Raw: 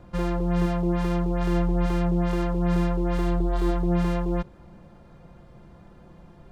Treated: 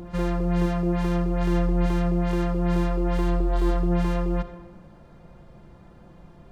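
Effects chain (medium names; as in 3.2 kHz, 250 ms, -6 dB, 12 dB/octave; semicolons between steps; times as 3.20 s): reverse echo 879 ms -16.5 dB; algorithmic reverb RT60 1.2 s, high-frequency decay 0.6×, pre-delay 20 ms, DRR 9.5 dB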